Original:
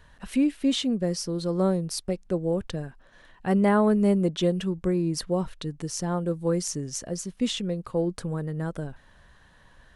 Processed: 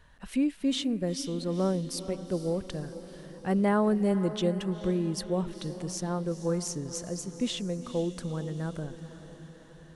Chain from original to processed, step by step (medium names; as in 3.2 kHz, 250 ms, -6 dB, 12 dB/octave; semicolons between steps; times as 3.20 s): echo that smears into a reverb 462 ms, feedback 58%, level -13 dB; trim -4 dB